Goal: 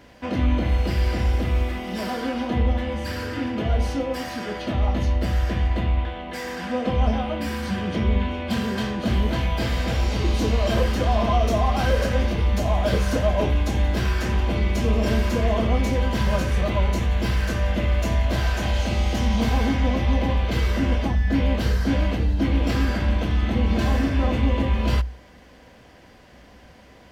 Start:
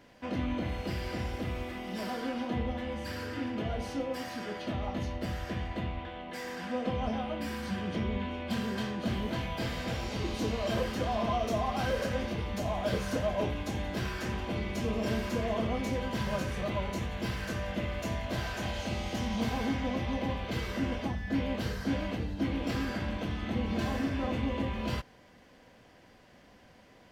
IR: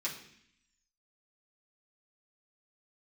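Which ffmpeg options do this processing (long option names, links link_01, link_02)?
-af "equalizer=frequency=61:width=4.5:gain=15,volume=8dB"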